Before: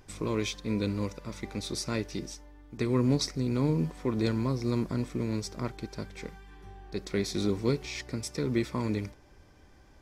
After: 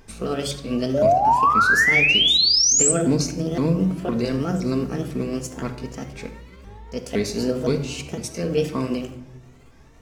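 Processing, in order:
pitch shifter swept by a sawtooth +6 semitones, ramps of 511 ms
sound drawn into the spectrogram rise, 0:00.94–0:02.92, 550–8,300 Hz −23 dBFS
rectangular room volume 2,700 cubic metres, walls furnished, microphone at 1.6 metres
level +5 dB

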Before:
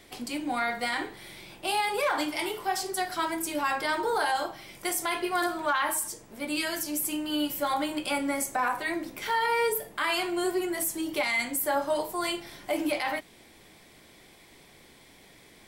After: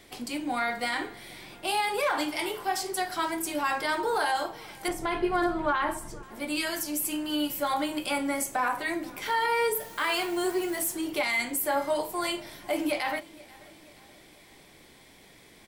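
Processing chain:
0:04.88–0:06.23: RIAA equalisation playback
0:09.79–0:10.93: background noise white −50 dBFS
repeating echo 483 ms, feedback 54%, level −23 dB

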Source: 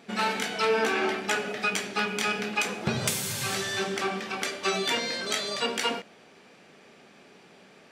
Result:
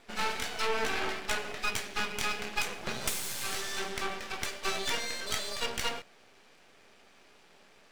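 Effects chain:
high-pass filter 440 Hz 6 dB per octave
half-wave rectification

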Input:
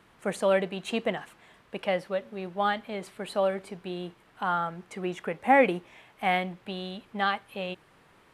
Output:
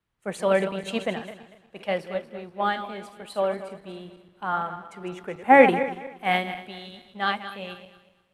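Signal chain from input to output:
feedback delay that plays each chunk backwards 119 ms, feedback 66%, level −8.5 dB
multiband upward and downward expander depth 70%

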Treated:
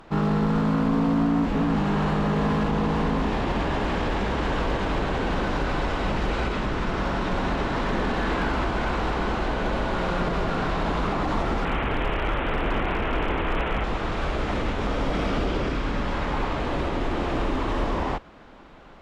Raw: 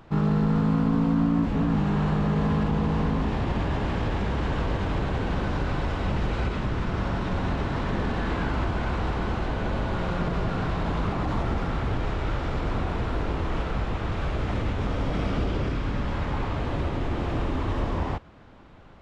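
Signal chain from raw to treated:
0:11.65–0:13.84: linear delta modulator 16 kbit/s, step −26.5 dBFS
parametric band 97 Hz −11.5 dB 1.5 octaves
asymmetric clip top −23 dBFS, bottom −21.5 dBFS
level +5 dB

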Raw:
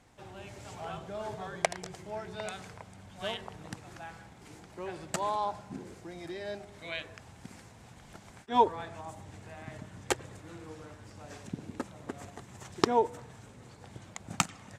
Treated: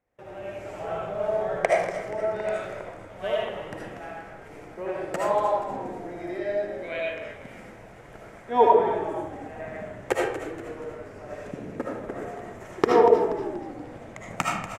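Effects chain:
noise gate with hold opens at −46 dBFS
octave-band graphic EQ 500/2,000/4,000/8,000 Hz +10/+6/−8/−6 dB
echo with shifted repeats 239 ms, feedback 46%, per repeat −55 Hz, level −11.5 dB
comb and all-pass reverb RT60 0.68 s, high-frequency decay 0.7×, pre-delay 35 ms, DRR −3.5 dB
level −1.5 dB

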